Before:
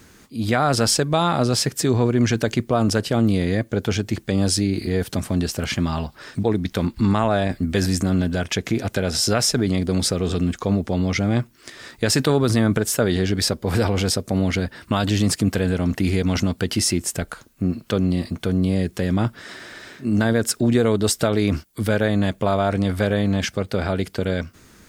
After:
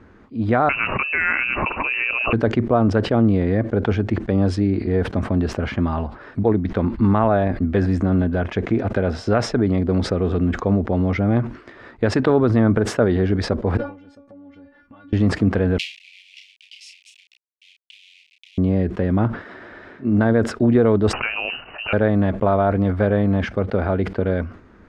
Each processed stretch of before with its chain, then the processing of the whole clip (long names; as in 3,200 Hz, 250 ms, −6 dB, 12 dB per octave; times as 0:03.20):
0:00.69–0:02.33: voice inversion scrambler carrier 2,800 Hz + envelope flattener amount 70%
0:13.77–0:15.13: stiff-string resonator 280 Hz, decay 0.21 s, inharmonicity 0.002 + downward compressor 12 to 1, threshold −43 dBFS
0:15.78–0:18.58: hold until the input has moved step −22 dBFS + Butterworth high-pass 2,400 Hz 72 dB per octave + double-tracking delay 32 ms −6 dB
0:21.13–0:21.93: voice inversion scrambler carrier 2,900 Hz + background raised ahead of every attack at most 120 dB per second
whole clip: low-pass filter 1,400 Hz 12 dB per octave; parametric band 150 Hz −8 dB 0.38 octaves; level that may fall only so fast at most 130 dB per second; level +3 dB